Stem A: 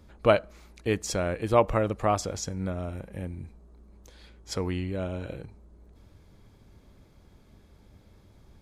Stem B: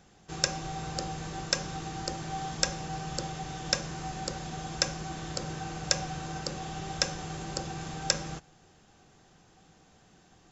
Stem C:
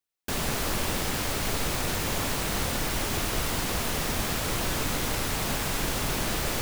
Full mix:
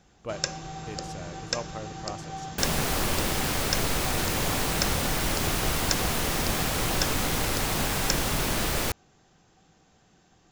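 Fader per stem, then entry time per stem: -14.5, -1.5, +1.5 dB; 0.00, 0.00, 2.30 s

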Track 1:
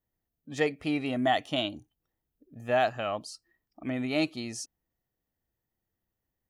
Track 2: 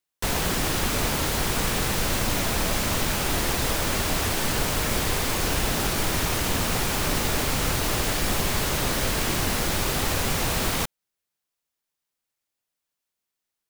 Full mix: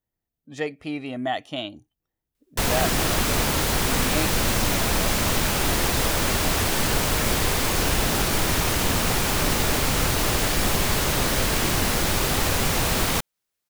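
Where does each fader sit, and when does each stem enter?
-1.0, +2.5 dB; 0.00, 2.35 s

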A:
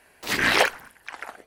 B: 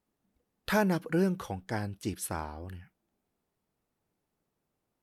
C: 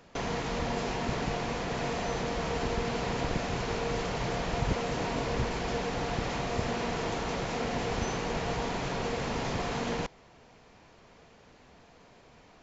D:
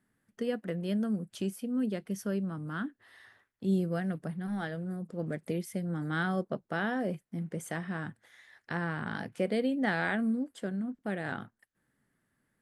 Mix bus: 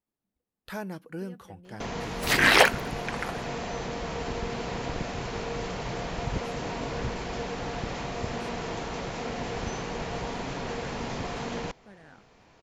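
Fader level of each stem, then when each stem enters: +1.5, -9.5, -1.5, -17.0 dB; 2.00, 0.00, 1.65, 0.80 s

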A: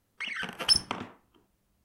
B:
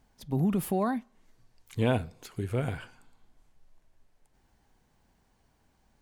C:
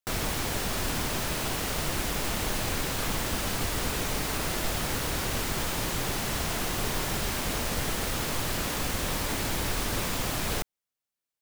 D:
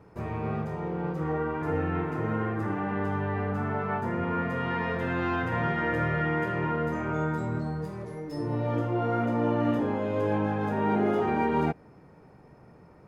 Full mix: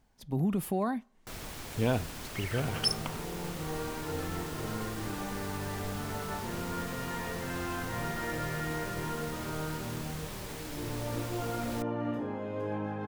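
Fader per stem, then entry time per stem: -6.5, -2.5, -12.5, -8.0 dB; 2.15, 0.00, 1.20, 2.40 s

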